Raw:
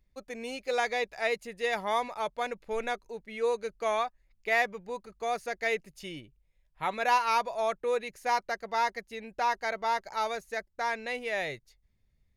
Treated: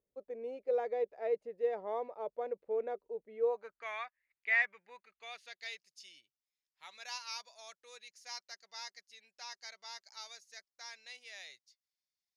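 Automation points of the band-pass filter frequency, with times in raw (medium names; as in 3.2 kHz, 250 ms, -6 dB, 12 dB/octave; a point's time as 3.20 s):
band-pass filter, Q 2.8
3.41 s 470 Hz
3.86 s 2 kHz
4.94 s 2 kHz
5.88 s 5.3 kHz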